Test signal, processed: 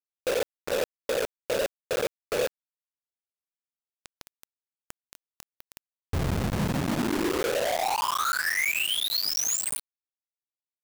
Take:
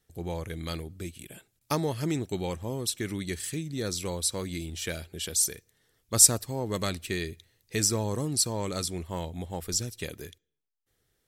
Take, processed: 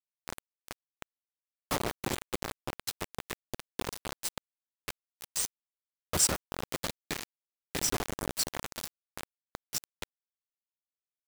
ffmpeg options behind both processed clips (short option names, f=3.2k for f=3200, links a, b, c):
-filter_complex "[0:a]afftfilt=real='hypot(re,im)*cos(2*PI*random(0))':imag='hypot(re,im)*sin(2*PI*random(1))':win_size=512:overlap=0.75,acrossover=split=8500[a][b];[b]acompressor=threshold=-44dB:ratio=4:attack=1:release=60[c];[a][c]amix=inputs=2:normalize=0,acrusher=bits=4:mix=0:aa=0.000001,volume=1.5dB"